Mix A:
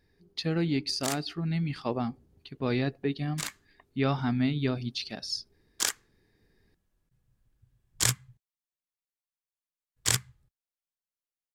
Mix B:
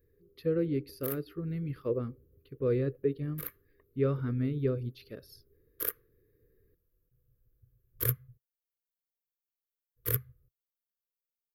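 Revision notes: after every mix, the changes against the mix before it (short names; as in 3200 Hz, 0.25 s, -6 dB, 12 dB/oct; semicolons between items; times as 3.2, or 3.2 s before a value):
master: add EQ curve 130 Hz 0 dB, 200 Hz -11 dB, 500 Hz +7 dB, 760 Hz -28 dB, 1200 Hz -7 dB, 8100 Hz -29 dB, 12000 Hz +9 dB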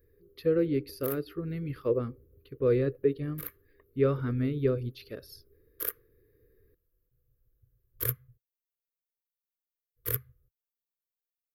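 speech +5.0 dB; master: add bell 170 Hz -5.5 dB 1.3 oct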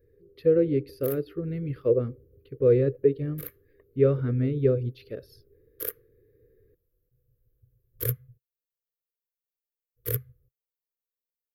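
speech: add tone controls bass -1 dB, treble -9 dB; master: add graphic EQ 125/500/1000 Hz +6/+7/-7 dB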